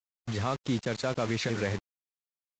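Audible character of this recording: a quantiser's noise floor 6-bit, dither none; Vorbis

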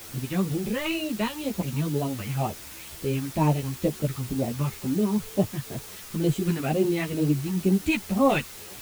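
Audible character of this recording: phasing stages 2, 2.1 Hz, lowest notch 550–1700 Hz; a quantiser's noise floor 8-bit, dither triangular; a shimmering, thickened sound

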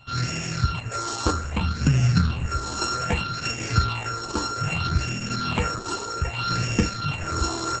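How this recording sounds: a buzz of ramps at a fixed pitch in blocks of 32 samples; phasing stages 6, 0.63 Hz, lowest notch 150–1100 Hz; tremolo triangle 1.1 Hz, depth 40%; Opus

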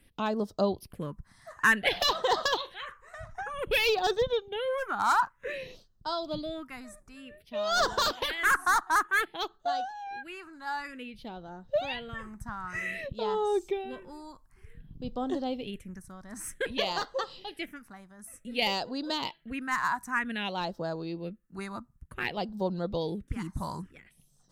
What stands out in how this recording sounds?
phasing stages 4, 0.54 Hz, lowest notch 470–2300 Hz

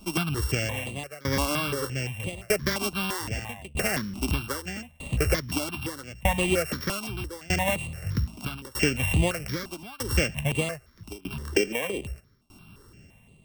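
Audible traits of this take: a buzz of ramps at a fixed pitch in blocks of 16 samples; tremolo saw down 0.8 Hz, depth 95%; notches that jump at a steady rate 5.8 Hz 480–5400 Hz

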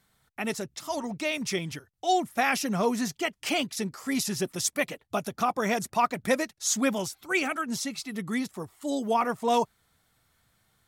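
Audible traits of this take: noise floor -71 dBFS; spectral tilt -3.0 dB/octave

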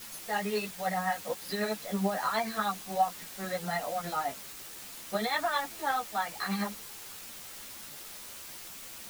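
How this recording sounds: tremolo triangle 9.4 Hz, depth 60%; a quantiser's noise floor 8-bit, dither triangular; a shimmering, thickened sound

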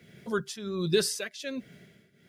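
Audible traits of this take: a quantiser's noise floor 12-bit, dither none; tremolo triangle 1.3 Hz, depth 85%

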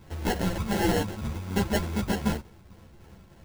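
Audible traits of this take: a buzz of ramps at a fixed pitch in blocks of 32 samples; phasing stages 6, 3.3 Hz, lowest notch 350–2800 Hz; aliases and images of a low sample rate 1.2 kHz, jitter 0%; a shimmering, thickened sound

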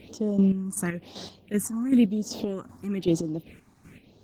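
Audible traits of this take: a quantiser's noise floor 12-bit, dither none; chopped level 2.6 Hz, depth 60%, duty 35%; phasing stages 4, 1 Hz, lowest notch 470–2300 Hz; Opus

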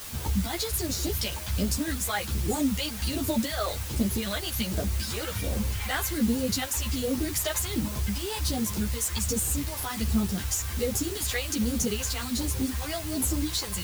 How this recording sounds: phasing stages 2, 1.3 Hz, lowest notch 210–2400 Hz; a quantiser's noise floor 6-bit, dither triangular; a shimmering, thickened sound

